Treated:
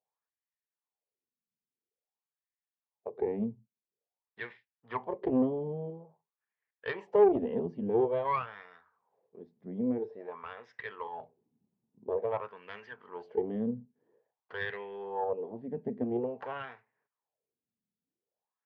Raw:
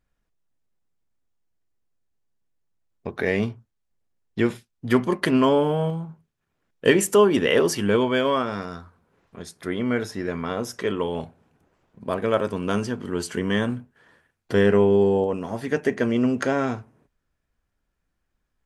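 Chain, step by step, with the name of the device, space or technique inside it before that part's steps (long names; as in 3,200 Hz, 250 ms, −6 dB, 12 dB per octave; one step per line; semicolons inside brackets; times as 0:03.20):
wah-wah guitar rig (LFO wah 0.49 Hz 210–1,900 Hz, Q 4.6; tube saturation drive 20 dB, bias 0.65; loudspeaker in its box 87–4,400 Hz, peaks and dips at 120 Hz +6 dB, 300 Hz −7 dB, 450 Hz +7 dB, 860 Hz +5 dB, 1,400 Hz −9 dB)
0:11.07–0:12.06: parametric band 520 Hz −9 dB 0.92 octaves
level +1.5 dB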